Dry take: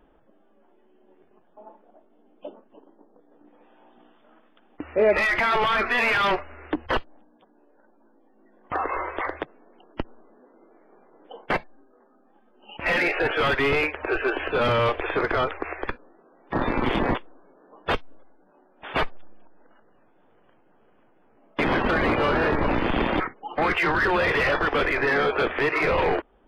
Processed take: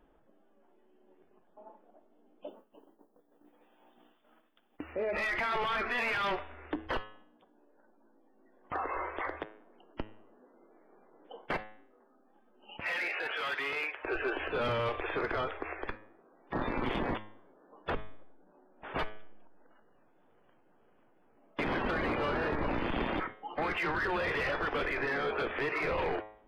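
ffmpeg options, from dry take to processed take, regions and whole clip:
ffmpeg -i in.wav -filter_complex "[0:a]asettb=1/sr,asplit=3[link_01][link_02][link_03];[link_01]atrim=end=2.474[link_04];[link_02]atrim=start=2.47:end=4.93,asetpts=PTS-STARTPTS,afade=type=in:duration=0.004:curve=qsin,afade=type=out:start_time=2.456:duration=0.004:curve=qsin,agate=range=-33dB:threshold=-53dB:ratio=3:release=100:detection=peak,aemphasis=mode=production:type=75fm[link_05];[link_03]atrim=start=4.926[link_06];[link_04][link_05]acrossfade=duration=0.004:curve1=hsin:curve2=qsin[link_07];[link_07][link_06]acrossfade=duration=0.004:curve1=qsin:curve2=hsin,asettb=1/sr,asplit=3[link_08][link_09][link_10];[link_08]atrim=end=12.814[link_11];[link_09]atrim=start=12.81:end=14.05,asetpts=PTS-STARTPTS,afade=type=in:duration=0.004:curve=qsin,afade=type=out:start_time=1.236:duration=0.004:curve=qsin,acrossover=split=2700[link_12][link_13];[link_13]acompressor=threshold=-36dB:ratio=4:attack=1:release=60[link_14];[link_12][link_14]amix=inputs=2:normalize=0,highpass=frequency=1200:poles=1,highshelf=frequency=4000:gain=7[link_15];[link_10]atrim=start=14.046[link_16];[link_11][link_15]acrossfade=duration=0.004:curve1=hsin:curve2=qsin[link_17];[link_17][link_16]acrossfade=duration=0.004:curve1=qsin:curve2=hsin,asettb=1/sr,asplit=3[link_18][link_19][link_20];[link_18]atrim=end=17.904[link_21];[link_19]atrim=start=17.9:end=18.99,asetpts=PTS-STARTPTS,afade=type=in:duration=0.004:curve=qsin,afade=type=out:start_time=1.086:duration=0.004:curve=qsin,lowpass=2200,lowshelf=frequency=430:gain=5,bandreject=frequency=50:width_type=h:width=6,bandreject=frequency=100:width_type=h:width=6,bandreject=frequency=150:width_type=h:width=6,bandreject=frequency=200:width_type=h:width=6,bandreject=frequency=250:width_type=h:width=6,bandreject=frequency=300:width_type=h:width=6[link_22];[link_20]atrim=start=18.986[link_23];[link_21][link_22]acrossfade=duration=0.004:curve1=hsin:curve2=qsin[link_24];[link_24][link_23]acrossfade=duration=0.004:curve1=qsin:curve2=hsin,bandreject=frequency=106.8:width_type=h:width=4,bandreject=frequency=213.6:width_type=h:width=4,bandreject=frequency=320.4:width_type=h:width=4,bandreject=frequency=427.2:width_type=h:width=4,bandreject=frequency=534:width_type=h:width=4,bandreject=frequency=640.8:width_type=h:width=4,bandreject=frequency=747.6:width_type=h:width=4,bandreject=frequency=854.4:width_type=h:width=4,bandreject=frequency=961.2:width_type=h:width=4,bandreject=frequency=1068:width_type=h:width=4,bandreject=frequency=1174.8:width_type=h:width=4,bandreject=frequency=1281.6:width_type=h:width=4,bandreject=frequency=1388.4:width_type=h:width=4,bandreject=frequency=1495.2:width_type=h:width=4,bandreject=frequency=1602:width_type=h:width=4,bandreject=frequency=1708.8:width_type=h:width=4,bandreject=frequency=1815.6:width_type=h:width=4,bandreject=frequency=1922.4:width_type=h:width=4,bandreject=frequency=2029.2:width_type=h:width=4,bandreject=frequency=2136:width_type=h:width=4,bandreject=frequency=2242.8:width_type=h:width=4,bandreject=frequency=2349.6:width_type=h:width=4,bandreject=frequency=2456.4:width_type=h:width=4,bandreject=frequency=2563.2:width_type=h:width=4,bandreject=frequency=2670:width_type=h:width=4,bandreject=frequency=2776.8:width_type=h:width=4,bandreject=frequency=2883.6:width_type=h:width=4,bandreject=frequency=2990.4:width_type=h:width=4,bandreject=frequency=3097.2:width_type=h:width=4,bandreject=frequency=3204:width_type=h:width=4,bandreject=frequency=3310.8:width_type=h:width=4,bandreject=frequency=3417.6:width_type=h:width=4,bandreject=frequency=3524.4:width_type=h:width=4,bandreject=frequency=3631.2:width_type=h:width=4,bandreject=frequency=3738:width_type=h:width=4,bandreject=frequency=3844.8:width_type=h:width=4,alimiter=limit=-20.5dB:level=0:latency=1:release=38,volume=-6dB" out.wav

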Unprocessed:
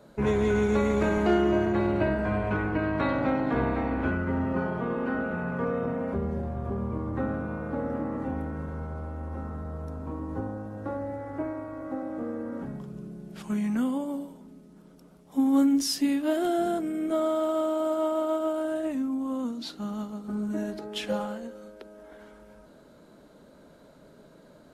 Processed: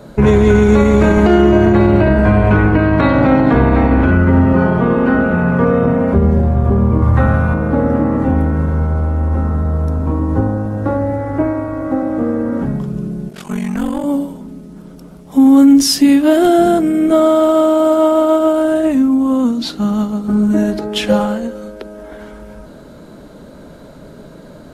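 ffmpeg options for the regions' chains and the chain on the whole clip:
ffmpeg -i in.wav -filter_complex "[0:a]asettb=1/sr,asplit=3[link_01][link_02][link_03];[link_01]atrim=end=7.024[link_04];[link_02]atrim=start=7.02:end=7.54,asetpts=PTS-STARTPTS,afade=type=in:duration=0.004:curve=qsin,afade=type=out:start_time=0.516:duration=0.004:curve=qsin,equalizer=frequency=320:width_type=o:width=1.3:gain=-15,acontrast=39[link_05];[link_03]atrim=start=7.536[link_06];[link_04][link_05]acrossfade=duration=0.004:curve1=hsin:curve2=qsin[link_07];[link_07][link_06]acrossfade=duration=0.004:curve1=qsin:curve2=hsin,asettb=1/sr,asplit=3[link_08][link_09][link_10];[link_08]atrim=end=13.294[link_11];[link_09]atrim=start=13.29:end=14.04,asetpts=PTS-STARTPTS,afade=type=in:duration=0.004:curve=qsin,afade=type=out:start_time=0.746:duration=0.004:curve=qsin,bass=frequency=250:gain=-11,treble=frequency=4000:gain=1,aeval=exprs='val(0)*sin(2*PI*23*n/s)':channel_layout=same,aeval=exprs='clip(val(0),-1,0.0237)':channel_layout=same[link_12];[link_10]atrim=start=14.036[link_13];[link_11][link_12]acrossfade=duration=0.004:curve1=hsin:curve2=qsin[link_14];[link_14][link_13]acrossfade=duration=0.004:curve1=qsin:curve2=hsin,lowshelf=frequency=180:gain=8,alimiter=level_in=15.5dB:limit=-1dB:release=50:level=0:latency=1,volume=-1dB" out.wav

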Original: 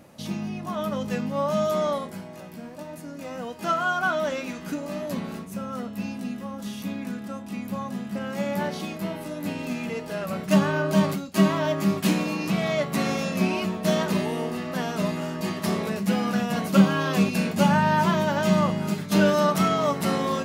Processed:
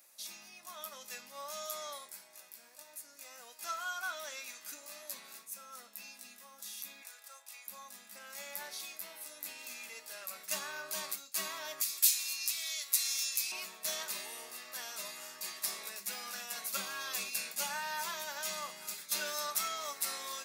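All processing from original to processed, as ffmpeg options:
ffmpeg -i in.wav -filter_complex "[0:a]asettb=1/sr,asplit=3[link_01][link_02][link_03];[link_01]atrim=end=7.024[link_04];[link_02]atrim=start=7.02:end=7.67,asetpts=PTS-STARTPTS,afade=type=in:duration=0.004:curve=qsin,afade=type=out:start_time=0.646:duration=0.004:curve=qsin,highpass=frequency=480:width=0.5412,highpass=frequency=480:width=1.3066,asoftclip=type=hard:threshold=-31dB[link_05];[link_03]atrim=start=7.666[link_06];[link_04][link_05]acrossfade=duration=0.004:curve1=hsin:curve2=qsin[link_07];[link_07][link_06]acrossfade=duration=0.004:curve1=qsin:curve2=hsin,asettb=1/sr,asplit=3[link_08][link_09][link_10];[link_08]atrim=end=11.814[link_11];[link_09]atrim=start=11.81:end=13.52,asetpts=PTS-STARTPTS,afade=type=in:duration=0.004:curve=qsin,afade=type=out:start_time=1.706:duration=0.004:curve=qsin,tiltshelf=frequency=1300:gain=-7.5,acrossover=split=140|3000[link_12][link_13][link_14];[link_13]acompressor=threshold=-37dB:ratio=4:attack=3.2:release=140:knee=2.83:detection=peak[link_15];[link_12][link_15][link_14]amix=inputs=3:normalize=0[link_16];[link_10]atrim=start=13.516[link_17];[link_11][link_16]acrossfade=duration=0.004:curve1=hsin:curve2=qsin[link_18];[link_18][link_17]acrossfade=duration=0.004:curve1=qsin:curve2=hsin,highpass=frequency=500:poles=1,aderivative,bandreject=frequency=3000:width=7.9,volume=1dB" out.wav

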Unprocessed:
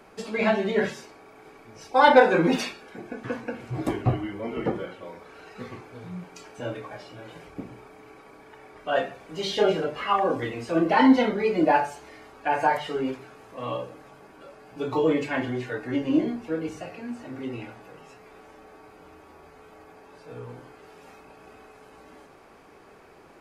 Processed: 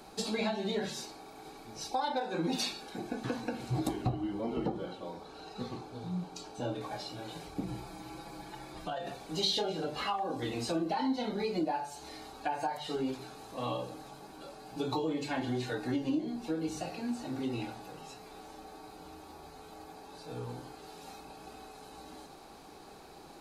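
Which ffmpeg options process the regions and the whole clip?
ffmpeg -i in.wav -filter_complex "[0:a]asettb=1/sr,asplit=3[link_01][link_02][link_03];[link_01]atrim=end=4.094[link_04];[link_02]atrim=start=4.09:end=6.81,asetpts=PTS-STARTPTS,afade=type=in:duration=0.004:curve=qsin,afade=type=out:start_time=2.716:duration=0.004:curve=qsin,lowpass=frequency=3900:poles=1,equalizer=frequency=2000:width=1.8:gain=-6[link_05];[link_03]atrim=start=6.806[link_06];[link_04][link_05]acrossfade=duration=0.004:curve1=hsin:curve2=qsin[link_07];[link_07][link_06]acrossfade=duration=0.004:curve1=qsin:curve2=hsin,asettb=1/sr,asplit=3[link_08][link_09][link_10];[link_08]atrim=end=7.634[link_11];[link_09]atrim=start=7.63:end=9.07,asetpts=PTS-STARTPTS,afade=type=in:duration=0.004:curve=qsin,afade=type=out:start_time=1.436:duration=0.004:curve=qsin,equalizer=frequency=64:width=0.68:gain=10,aecho=1:1:5.9:0.99,atrim=end_sample=63504,acompressor=threshold=-33dB:ratio=6:attack=3.2:release=140:knee=1:detection=peak[link_12];[link_10]atrim=start=9.066[link_13];[link_11][link_12]acrossfade=duration=0.004:curve1=hsin:curve2=qsin[link_14];[link_14][link_13]acrossfade=duration=0.004:curve1=qsin:curve2=hsin,equalizer=frequency=100:width_type=o:width=0.33:gain=-10,equalizer=frequency=315:width_type=o:width=0.33:gain=4,equalizer=frequency=800:width_type=o:width=0.33:gain=9,equalizer=frequency=2000:width_type=o:width=0.33:gain=-4,equalizer=frequency=4000:width_type=o:width=0.33:gain=11,acompressor=threshold=-28dB:ratio=6,bass=frequency=250:gain=7,treble=frequency=4000:gain=11,volume=-4dB" out.wav

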